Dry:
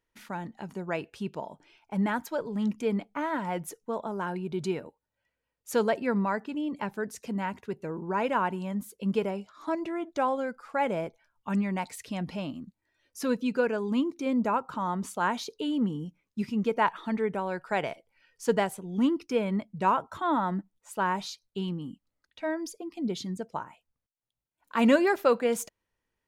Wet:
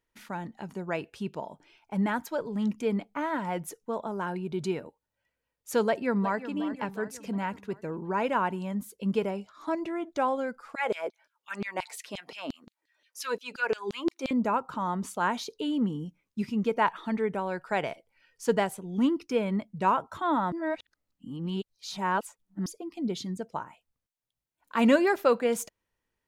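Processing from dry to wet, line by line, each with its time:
0:05.86–0:06.52: delay throw 360 ms, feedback 55%, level −13 dB
0:10.75–0:14.31: auto-filter high-pass saw down 5.7 Hz 270–4,300 Hz
0:20.52–0:22.66: reverse

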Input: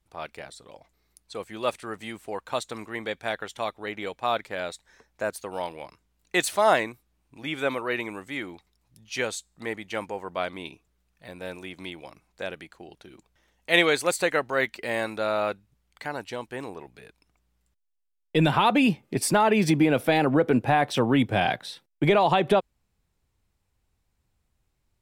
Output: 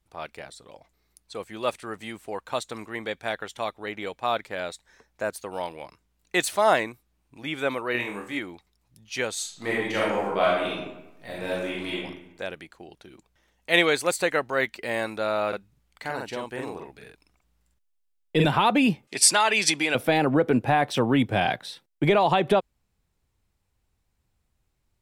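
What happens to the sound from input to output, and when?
0:07.92–0:08.39: flutter between parallel walls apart 4.2 metres, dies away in 0.36 s
0:09.33–0:11.97: thrown reverb, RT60 0.99 s, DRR −7 dB
0:15.48–0:18.45: double-tracking delay 46 ms −2 dB
0:19.07–0:19.95: meter weighting curve ITU-R 468

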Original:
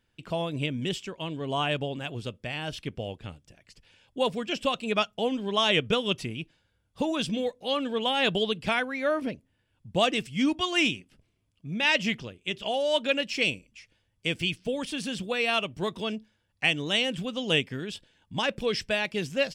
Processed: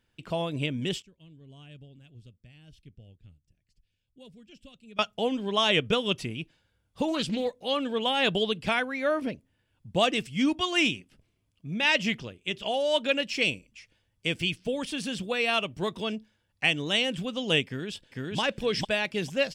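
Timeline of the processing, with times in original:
0:01.02–0:04.99: guitar amp tone stack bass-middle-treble 10-0-1
0:07.08–0:07.59: highs frequency-modulated by the lows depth 0.24 ms
0:17.66–0:18.39: delay throw 450 ms, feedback 15%, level −0.5 dB

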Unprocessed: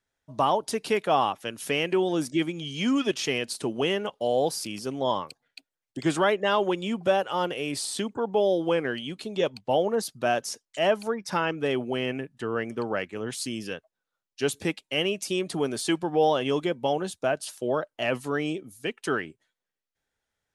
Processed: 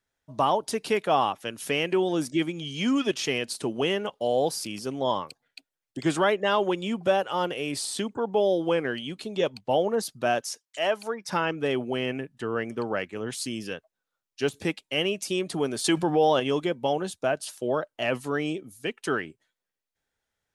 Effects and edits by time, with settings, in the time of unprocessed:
0:10.40–0:11.26: high-pass filter 1,200 Hz → 340 Hz 6 dB per octave
0:13.54–0:14.59: de-essing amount 80%
0:15.84–0:16.40: envelope flattener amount 50%

